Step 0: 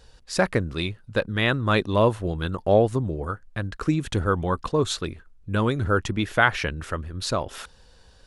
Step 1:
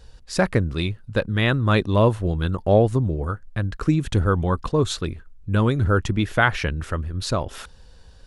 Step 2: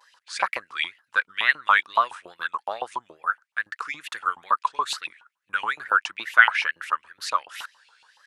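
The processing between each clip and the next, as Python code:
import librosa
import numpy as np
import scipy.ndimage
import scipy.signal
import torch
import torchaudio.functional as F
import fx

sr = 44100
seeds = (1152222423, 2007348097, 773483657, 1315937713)

y1 = fx.low_shelf(x, sr, hz=200.0, db=7.5)
y2 = fx.wow_flutter(y1, sr, seeds[0], rate_hz=2.1, depth_cents=140.0)
y2 = fx.filter_lfo_highpass(y2, sr, shape='saw_up', hz=7.1, low_hz=890.0, high_hz=2900.0, q=7.0)
y2 = y2 * 10.0 ** (-4.0 / 20.0)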